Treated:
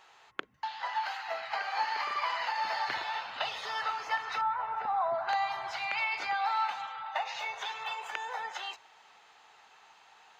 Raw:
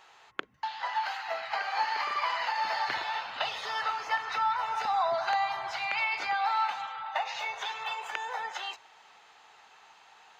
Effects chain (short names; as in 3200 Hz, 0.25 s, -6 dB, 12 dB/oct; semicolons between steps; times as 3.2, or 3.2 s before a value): 4.41–5.29 LPF 1600 Hz 12 dB/oct; gain -2 dB